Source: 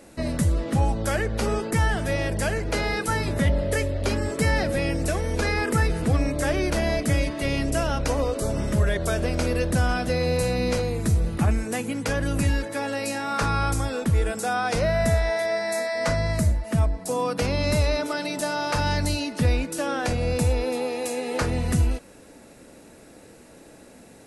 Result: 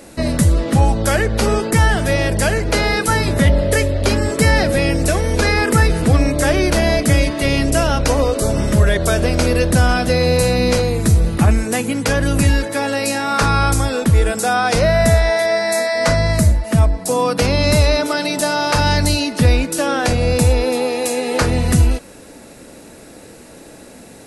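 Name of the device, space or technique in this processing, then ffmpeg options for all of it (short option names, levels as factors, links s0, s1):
presence and air boost: -af "equalizer=f=4200:t=o:w=0.77:g=2,highshelf=f=9500:g=4,volume=2.66"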